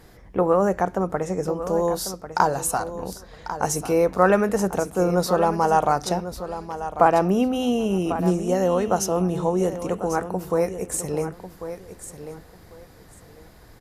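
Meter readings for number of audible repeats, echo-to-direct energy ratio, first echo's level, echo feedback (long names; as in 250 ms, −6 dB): 2, −11.5 dB, −11.5 dB, 20%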